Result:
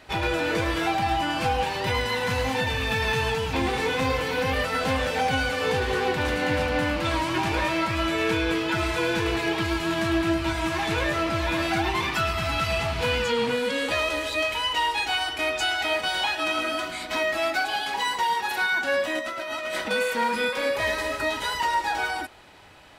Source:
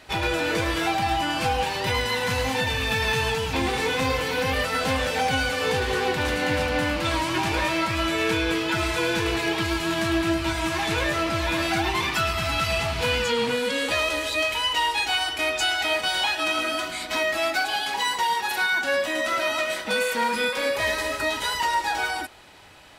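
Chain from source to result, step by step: peaking EQ 11 kHz -5 dB 2.7 oct; 19.19–19.91 s: compressor with a negative ratio -31 dBFS, ratio -1

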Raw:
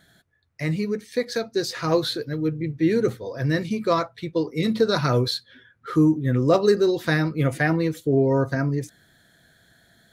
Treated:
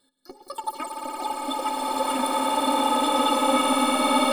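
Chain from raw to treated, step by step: pitch shift switched off and on -3 st, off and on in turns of 260 ms; harmonic-percussive split harmonic -3 dB; in parallel at +2 dB: peak limiter -17.5 dBFS, peak gain reduction 9 dB; on the sum: level held to a coarse grid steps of 19 dB; inharmonic resonator 110 Hz, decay 0.27 s, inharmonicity 0.03; on a send: echo with a slow build-up 134 ms, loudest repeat 8, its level -8.5 dB; on the sum: speed mistake 33 rpm record played at 78 rpm; swelling reverb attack 1560 ms, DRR -7 dB

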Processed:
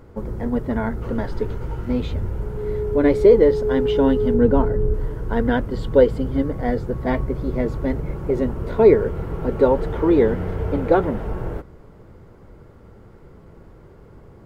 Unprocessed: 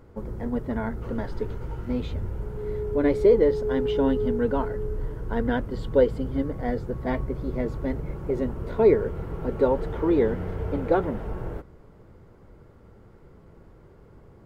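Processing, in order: 4.34–4.94 s: tilt shelf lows +5.5 dB, about 730 Hz; trim +5.5 dB

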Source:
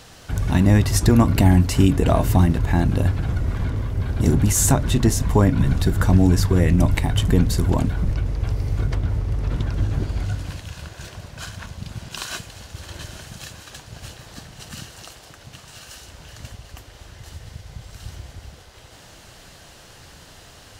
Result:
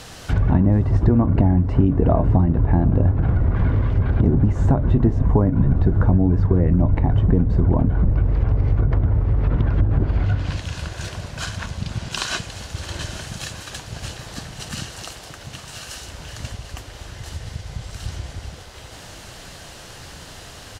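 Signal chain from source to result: low-pass that closes with the level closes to 930 Hz, closed at -16.5 dBFS; compression, threshold -18 dBFS, peak gain reduction 9 dB; delay 727 ms -21 dB; trim +6 dB

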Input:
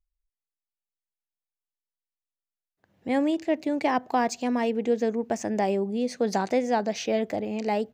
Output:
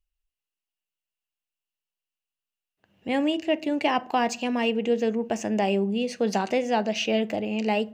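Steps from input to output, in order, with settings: peaking EQ 2.8 kHz +14.5 dB 0.29 oct; reverberation RT60 0.45 s, pre-delay 5 ms, DRR 13.5 dB

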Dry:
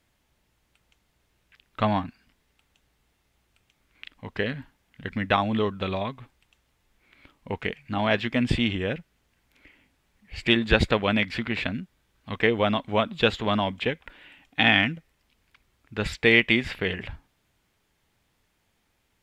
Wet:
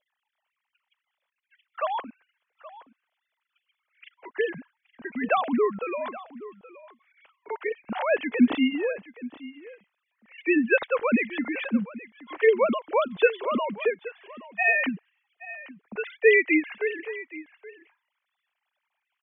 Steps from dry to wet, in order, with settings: formants replaced by sine waves; delay 823 ms -17.5 dB

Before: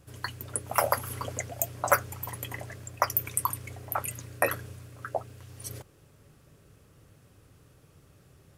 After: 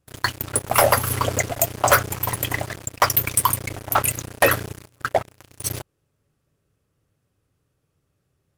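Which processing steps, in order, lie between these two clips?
waveshaping leveller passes 5; trim -4 dB

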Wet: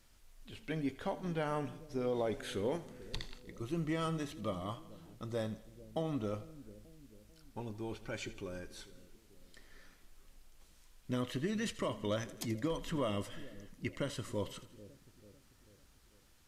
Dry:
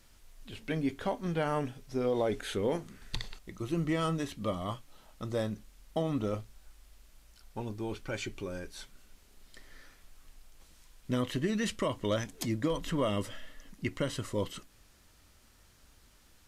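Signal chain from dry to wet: two-band feedback delay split 500 Hz, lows 442 ms, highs 82 ms, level -16 dB; trim -5 dB

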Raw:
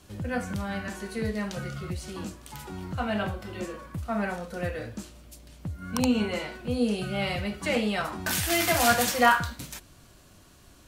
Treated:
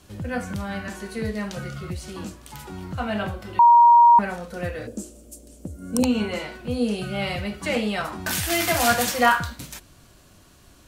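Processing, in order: 3.59–4.19 s: bleep 946 Hz -11 dBFS; 4.87–6.03 s: graphic EQ 125/250/500/1000/2000/4000/8000 Hz -11/+7/+9/-10/-10/-8/+10 dB; trim +2 dB

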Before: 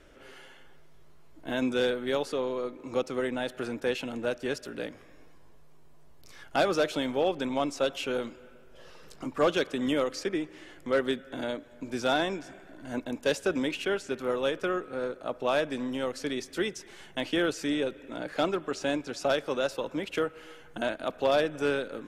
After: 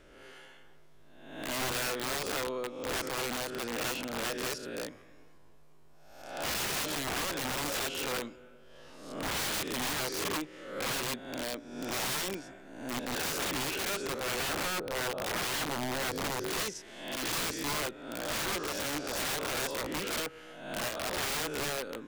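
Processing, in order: reverse spectral sustain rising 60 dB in 0.83 s; 14.40–16.48 s: graphic EQ 125/500/2000/4000/8000 Hz +11/+5/-8/-3/-12 dB; integer overflow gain 24 dB; trim -4 dB

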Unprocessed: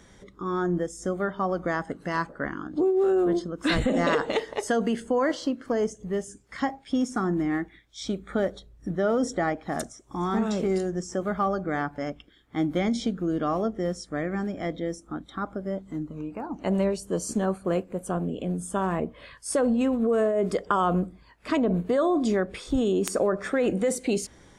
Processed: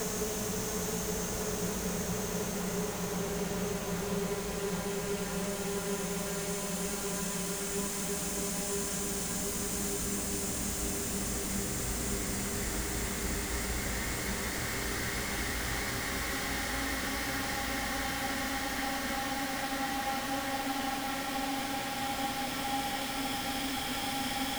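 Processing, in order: one-bit comparator; Paulstretch 27×, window 0.50 s, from 5.94 s; trim -7 dB

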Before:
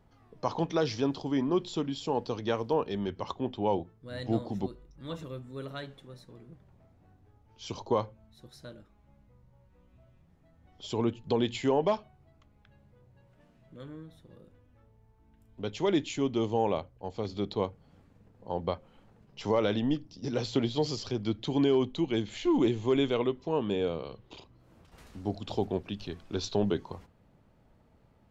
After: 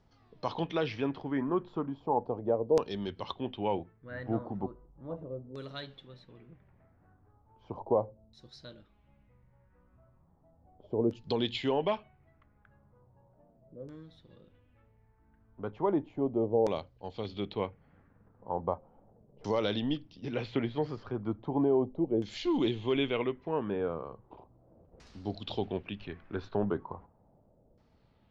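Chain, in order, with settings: LFO low-pass saw down 0.36 Hz 500–5600 Hz; trim -3.5 dB

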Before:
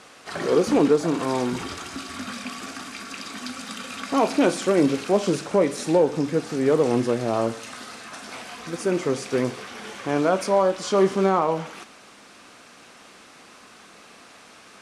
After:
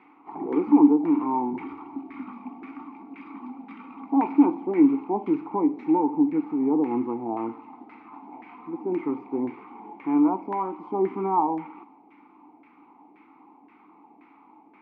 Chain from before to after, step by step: vowel filter u; LFO low-pass saw down 1.9 Hz 660–1800 Hz; trim +6.5 dB

